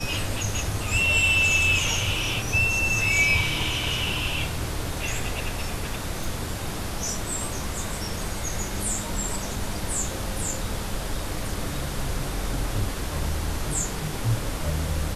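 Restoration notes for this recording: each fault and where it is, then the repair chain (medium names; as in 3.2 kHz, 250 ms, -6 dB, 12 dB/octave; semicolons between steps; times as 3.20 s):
6.24 s: pop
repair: de-click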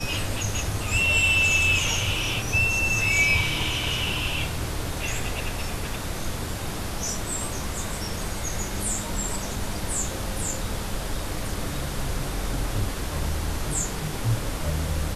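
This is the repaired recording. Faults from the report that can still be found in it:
nothing left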